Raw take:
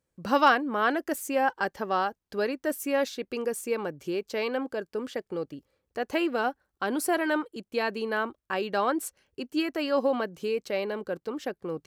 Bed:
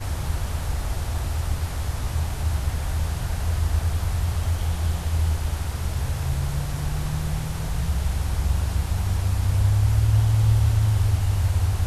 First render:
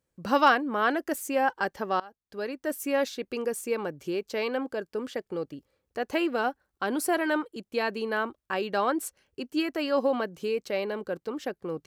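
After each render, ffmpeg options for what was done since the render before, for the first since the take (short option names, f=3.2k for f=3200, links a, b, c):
-filter_complex "[0:a]asplit=2[a][b];[a]atrim=end=2,asetpts=PTS-STARTPTS,afade=t=out:st=1.996:d=0.004:c=hsin:silence=0.0749894[c];[b]atrim=start=2,asetpts=PTS-STARTPTS,afade=t=in:d=0.85:silence=0.0749894[d];[c][d]concat=n=2:v=0:a=1"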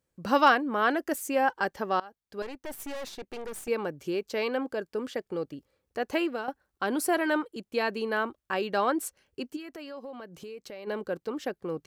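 -filter_complex "[0:a]asettb=1/sr,asplit=3[a][b][c];[a]atrim=end=2.424[d];[b]atrim=start=2.42:end=3.68,asetpts=PTS-STARTPTS,afade=t=in:d=0.004:c=qsin,afade=t=out:st=1.256:d=0.004:c=qsin,aeval=exprs='(tanh(56.2*val(0)+0.7)-tanh(0.7))/56.2':c=same[e];[c]atrim=start=3.676[f];[d][e]acrossfade=d=0.004:c1=hsin:c2=qsin[g];[g][f]acrossfade=d=0.004:c1=qsin:c2=hsin,asplit=3[h][i][j];[h]afade=t=out:st=9.55:d=0.02[k];[i]acompressor=threshold=-41dB:ratio=4:attack=3.2:release=140:knee=1:detection=peak,afade=t=in:st=9.55:d=0.02,afade=t=out:st=10.86:d=0.02[l];[j]afade=t=in:st=10.86:d=0.02[m];[k][l][m]amix=inputs=3:normalize=0,asplit=2[n][o];[n]atrim=end=6.48,asetpts=PTS-STARTPTS,afade=t=out:st=6.06:d=0.42:c=qsin:silence=0.237137[p];[o]atrim=start=6.48,asetpts=PTS-STARTPTS,afade=t=in:d=0.004:c=hsin:silence=0.237137[q];[p][q]concat=n=2:v=0:a=1"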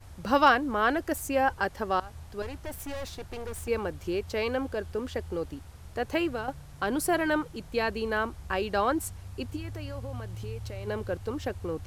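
-filter_complex "[1:a]volume=-20dB[a];[0:a][a]amix=inputs=2:normalize=0"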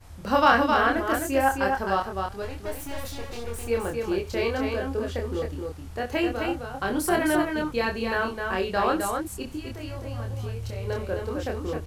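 -filter_complex "[0:a]asplit=2[a][b];[b]adelay=26,volume=-2.5dB[c];[a][c]amix=inputs=2:normalize=0,aecho=1:1:63|261:0.168|0.596"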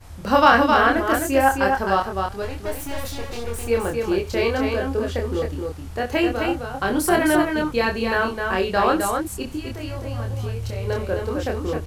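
-af "volume=5dB,alimiter=limit=-2dB:level=0:latency=1"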